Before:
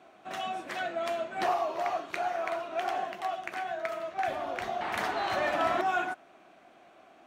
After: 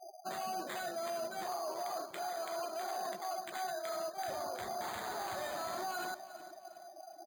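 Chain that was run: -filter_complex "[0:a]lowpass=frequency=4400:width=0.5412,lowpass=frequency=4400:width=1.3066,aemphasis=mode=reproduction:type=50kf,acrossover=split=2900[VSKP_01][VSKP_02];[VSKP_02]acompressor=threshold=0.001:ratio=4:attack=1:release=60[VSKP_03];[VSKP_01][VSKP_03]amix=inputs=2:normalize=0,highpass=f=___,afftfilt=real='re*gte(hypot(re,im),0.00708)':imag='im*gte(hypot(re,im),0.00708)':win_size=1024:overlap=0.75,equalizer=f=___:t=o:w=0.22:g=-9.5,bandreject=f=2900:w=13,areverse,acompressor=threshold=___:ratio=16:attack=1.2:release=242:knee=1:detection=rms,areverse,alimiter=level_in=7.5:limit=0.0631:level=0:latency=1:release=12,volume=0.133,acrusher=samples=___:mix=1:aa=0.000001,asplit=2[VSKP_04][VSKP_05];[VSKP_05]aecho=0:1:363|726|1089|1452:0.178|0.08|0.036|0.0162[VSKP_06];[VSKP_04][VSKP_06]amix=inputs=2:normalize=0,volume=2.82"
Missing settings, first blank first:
53, 280, 0.01, 8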